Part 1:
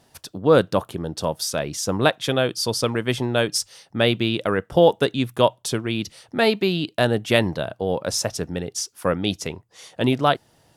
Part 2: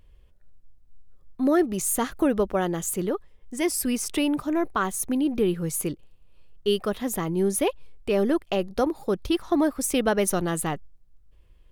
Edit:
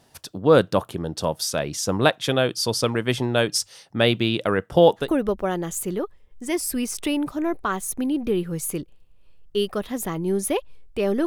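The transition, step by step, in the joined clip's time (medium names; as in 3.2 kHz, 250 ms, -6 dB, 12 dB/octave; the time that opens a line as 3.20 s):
part 1
5.03 s: go over to part 2 from 2.14 s, crossfade 0.14 s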